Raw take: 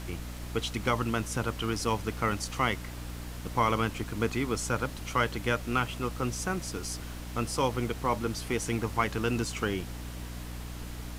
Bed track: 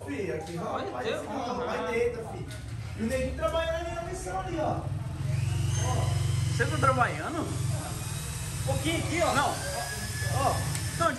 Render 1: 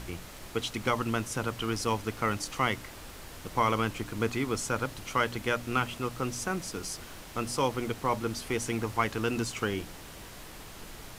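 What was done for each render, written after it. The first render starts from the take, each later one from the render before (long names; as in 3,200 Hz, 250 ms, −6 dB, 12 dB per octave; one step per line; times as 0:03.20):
hum removal 60 Hz, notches 5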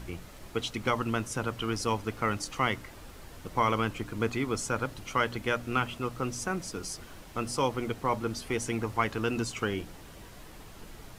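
broadband denoise 6 dB, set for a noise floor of −46 dBFS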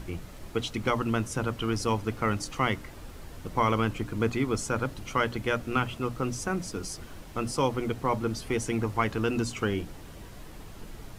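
low-shelf EQ 380 Hz +5.5 dB
mains-hum notches 60/120/180/240 Hz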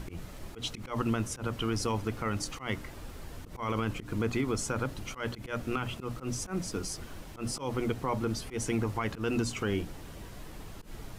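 brickwall limiter −20 dBFS, peak gain reduction 9.5 dB
volume swells 108 ms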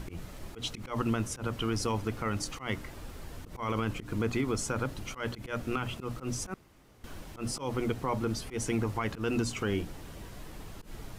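0:06.54–0:07.04: fill with room tone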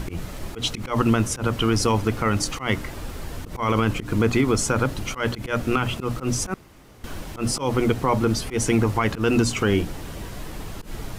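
level +10.5 dB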